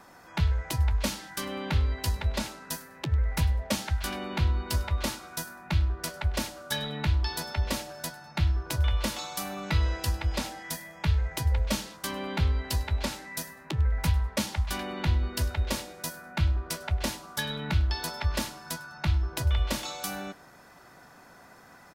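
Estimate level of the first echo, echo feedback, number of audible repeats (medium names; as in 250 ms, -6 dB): -22.0 dB, 25%, 2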